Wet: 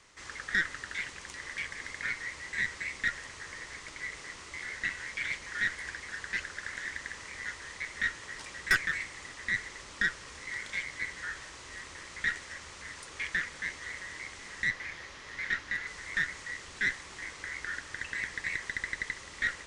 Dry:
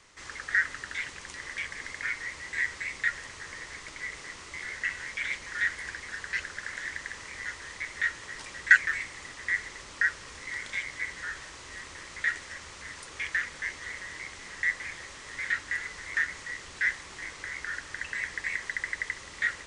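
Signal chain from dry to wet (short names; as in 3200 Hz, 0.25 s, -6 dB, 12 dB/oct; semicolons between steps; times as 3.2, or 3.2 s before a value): 14.68–15.87 bell 8300 Hz -10 dB 0.58 oct; tube stage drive 19 dB, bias 0.45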